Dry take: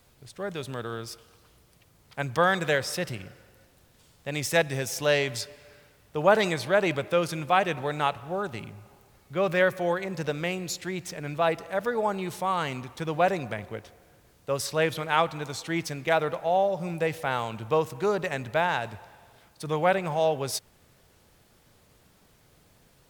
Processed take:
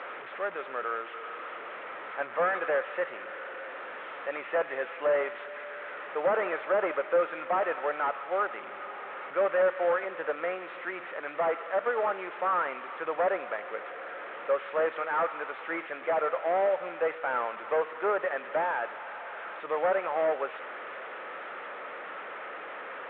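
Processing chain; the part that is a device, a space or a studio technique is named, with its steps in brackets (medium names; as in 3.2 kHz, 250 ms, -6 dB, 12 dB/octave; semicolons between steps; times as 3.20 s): digital answering machine (band-pass 340–3000 Hz; one-bit delta coder 16 kbps, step -36.5 dBFS; cabinet simulation 420–3800 Hz, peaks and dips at 540 Hz +5 dB, 1.3 kHz +9 dB, 1.8 kHz +4 dB, 2.9 kHz -4 dB)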